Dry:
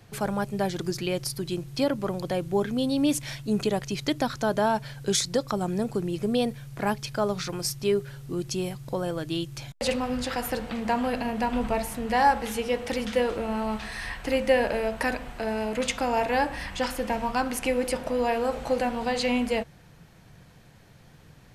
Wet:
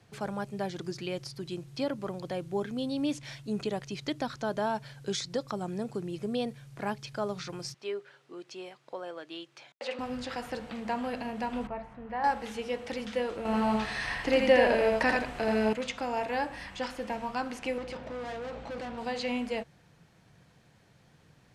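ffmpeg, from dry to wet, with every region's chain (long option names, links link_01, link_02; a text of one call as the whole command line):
ffmpeg -i in.wav -filter_complex "[0:a]asettb=1/sr,asplit=3[link_01][link_02][link_03];[link_01]atrim=end=7.744[link_04];[link_02]atrim=start=7.74:end=9.99,asetpts=PTS-STARTPTS,afade=type=in:duration=0.004:curve=qsin,afade=type=out:start_time=2.246:duration=0.004:curve=qsin,highpass=350,lowpass=2600,aemphasis=mode=production:type=bsi[link_05];[link_03]atrim=start=9.986[link_06];[link_04][link_05]acrossfade=duration=0.004:curve1=hsin:curve2=qsin[link_07];[link_07][link_06]acrossfade=duration=0.004:curve1=qsin:curve2=hsin,asettb=1/sr,asplit=3[link_08][link_09][link_10];[link_08]atrim=end=11.674[link_11];[link_09]atrim=start=11.67:end=12.24,asetpts=PTS-STARTPTS,afade=type=in:duration=0.004:curve=qsin,afade=type=out:start_time=0.566:duration=0.004:curve=qsin,lowpass=1400,equalizer=frequency=330:width_type=o:width=2.2:gain=-7[link_12];[link_10]atrim=start=12.236[link_13];[link_11][link_12]acrossfade=duration=0.004:curve1=hsin:curve2=qsin[link_14];[link_14][link_13]acrossfade=duration=0.004:curve1=qsin:curve2=hsin,asettb=1/sr,asplit=3[link_15][link_16][link_17];[link_15]atrim=end=13.454[link_18];[link_16]atrim=start=13.45:end=15.73,asetpts=PTS-STARTPTS,afade=type=in:duration=0.004:curve=qsin,afade=type=out:start_time=2.276:duration=0.004:curve=qsin,acontrast=75,aecho=1:1:83:0.708,atrim=end_sample=100548[link_19];[link_17]atrim=start=15.726[link_20];[link_18][link_19]acrossfade=duration=0.004:curve1=hsin:curve2=qsin[link_21];[link_21][link_20]acrossfade=duration=0.004:curve1=qsin:curve2=hsin,asettb=1/sr,asplit=3[link_22][link_23][link_24];[link_22]atrim=end=17.784[link_25];[link_23]atrim=start=17.78:end=18.98,asetpts=PTS-STARTPTS,afade=type=in:duration=0.004:curve=qsin,afade=type=out:start_time=1.196:duration=0.004:curve=qsin,lowpass=4400,asoftclip=type=hard:threshold=-29dB,aeval=exprs='val(0)+0.01*(sin(2*PI*60*n/s)+sin(2*PI*2*60*n/s)/2+sin(2*PI*3*60*n/s)/3+sin(2*PI*4*60*n/s)/4+sin(2*PI*5*60*n/s)/5)':channel_layout=same[link_26];[link_24]atrim=start=18.976[link_27];[link_25][link_26]acrossfade=duration=0.004:curve1=hsin:curve2=qsin[link_28];[link_28][link_27]acrossfade=duration=0.004:curve1=qsin:curve2=hsin,lowpass=10000,acrossover=split=6600[link_29][link_30];[link_30]acompressor=threshold=-51dB:ratio=4:attack=1:release=60[link_31];[link_29][link_31]amix=inputs=2:normalize=0,highpass=frequency=92:poles=1,volume=-6.5dB" out.wav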